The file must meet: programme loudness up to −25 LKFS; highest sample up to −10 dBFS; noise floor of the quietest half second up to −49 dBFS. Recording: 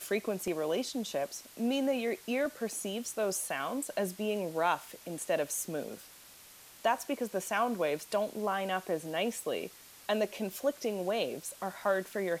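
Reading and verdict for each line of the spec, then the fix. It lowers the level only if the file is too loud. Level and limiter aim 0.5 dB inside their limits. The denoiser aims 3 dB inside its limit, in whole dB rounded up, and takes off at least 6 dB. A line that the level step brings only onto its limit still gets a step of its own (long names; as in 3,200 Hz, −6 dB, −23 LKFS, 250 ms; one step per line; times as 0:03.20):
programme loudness −33.5 LKFS: in spec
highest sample −16.0 dBFS: in spec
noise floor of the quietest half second −55 dBFS: in spec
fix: no processing needed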